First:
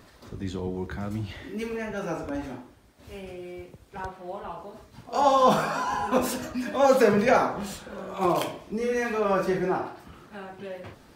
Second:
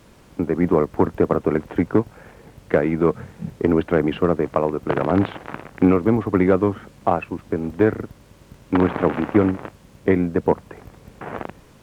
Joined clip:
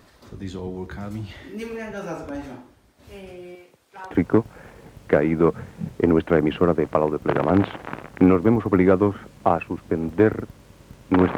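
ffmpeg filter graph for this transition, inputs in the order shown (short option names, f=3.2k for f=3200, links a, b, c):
-filter_complex "[0:a]asettb=1/sr,asplit=3[a][b][c];[a]atrim=end=3.554[d];[b]atrim=start=3.55:end=4.11,asetpts=PTS-STARTPTS,afade=t=in:d=0.004:c=qsin,afade=t=out:st=0.556:d=0.004:c=qsin,highpass=f=670:p=1[e];[c]atrim=start=4.106[f];[d][e]acrossfade=d=0.004:c1=hsin:c2=qsin[g];[g][f]acrossfade=d=0.004:c1=qsin:c2=hsin,apad=whole_dur=11.37,atrim=end=11.37,atrim=end=4.112[h];[1:a]atrim=start=1.718:end=8.98[i];[h][i]acrossfade=d=0.004:c1=hsin:c2=hsin"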